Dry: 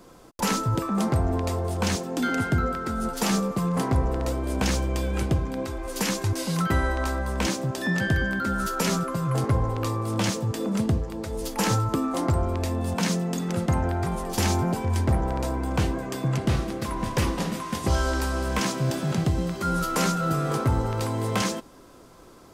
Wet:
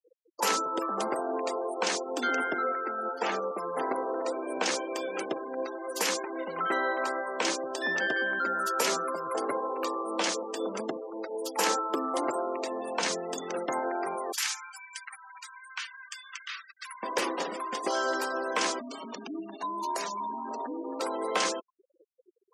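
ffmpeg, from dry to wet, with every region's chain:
-filter_complex "[0:a]asettb=1/sr,asplit=3[a][b][c];[a]atrim=end=2.544[d];[b]atrim=start=2.54:end=3.91,asetpts=PTS-STARTPTS,afade=t=in:d=0.004:c=qsin,afade=t=out:st=1.366:d=0.004:c=qsin,acrossover=split=3000[e][f];[f]acompressor=threshold=-41dB:ratio=4:attack=1:release=60[g];[e][g]amix=inputs=2:normalize=0,equalizer=f=69:t=o:w=1.5:g=-14.5,bandreject=f=1.1k:w=14[h];[c]atrim=start=3.906[i];[d][h]acrossfade=d=0.004:c1=hsin:c2=qsin[j];[j][i]acrossfade=d=0.004:c1=qsin:c2=hsin,asettb=1/sr,asplit=3[k][l][m];[k]atrim=end=6.234[n];[l]atrim=start=6.23:end=6.72,asetpts=PTS-STARTPTS,afade=t=in:d=0.004:c=qsin,afade=t=out:st=0.486:d=0.004:c=qsin,acrossover=split=3100[o][p];[p]acompressor=threshold=-46dB:ratio=4:attack=1:release=60[q];[o][q]amix=inputs=2:normalize=0,lowpass=4.5k[r];[m]atrim=start=6.716[s];[n][r]acrossfade=d=0.004:c1=hsin:c2=qsin[t];[t][s]acrossfade=d=0.004:c1=qsin:c2=hsin,asettb=1/sr,asplit=3[u][v][w];[u]atrim=end=14.324[x];[v]atrim=start=14.32:end=17.03,asetpts=PTS-STARTPTS,afade=t=in:d=0.004:c=qsin,afade=t=out:st=2.706:d=0.004:c=qsin,highpass=f=1.4k:w=0.5412,highpass=f=1.4k:w=1.3066,aecho=1:1:68|136|204|272|340:0.224|0.119|0.0629|0.0333|0.0177,atrim=end_sample=119511[y];[w]atrim=start=17.026[z];[x][y]acrossfade=d=0.004:c1=hsin:c2=qsin[aa];[aa][z]acrossfade=d=0.004:c1=qsin:c2=hsin,asettb=1/sr,asplit=3[ab][ac][ad];[ab]atrim=end=18.794[ae];[ac]atrim=start=18.79:end=21,asetpts=PTS-STARTPTS,afade=t=in:d=0.004:c=qsin,afade=t=out:st=2.206:d=0.004:c=qsin,acompressor=threshold=-25dB:ratio=10:attack=3.2:release=140:knee=1:detection=peak,afreqshift=-380[af];[ad]atrim=start=20.996[ag];[ae][af]acrossfade=d=0.004:c1=hsin:c2=qsin[ah];[ah][ag]acrossfade=d=0.004:c1=qsin:c2=hsin,highpass=f=350:w=0.5412,highpass=f=350:w=1.3066,afftfilt=real='re*gte(hypot(re,im),0.0178)':imag='im*gte(hypot(re,im),0.0178)':win_size=1024:overlap=0.75"

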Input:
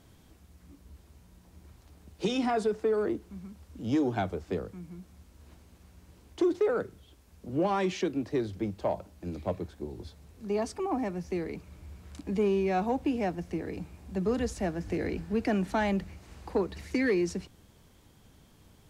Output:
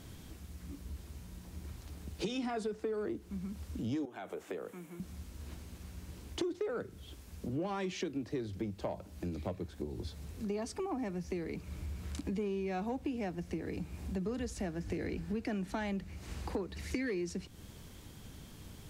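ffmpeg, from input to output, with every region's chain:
-filter_complex "[0:a]asettb=1/sr,asplit=3[a][b][c];[a]atrim=end=4.054[d];[b]atrim=start=4.05:end=5,asetpts=PTS-STARTPTS,afade=t=in:d=0.004:c=qsin,afade=t=out:st=0.946:d=0.004:c=qsin,highpass=400,equalizer=f=4.8k:t=o:w=0.68:g=-11,acompressor=threshold=-41dB:ratio=2.5:attack=3.2:release=140:knee=1:detection=peak[e];[c]atrim=start=4.996[f];[d][e]acrossfade=d=0.004:c1=hsin:c2=qsin[g];[g][f]acrossfade=d=0.004:c1=qsin:c2=hsin,equalizer=f=770:t=o:w=1.9:g=-4.5,acompressor=threshold=-45dB:ratio=4,volume=8dB"

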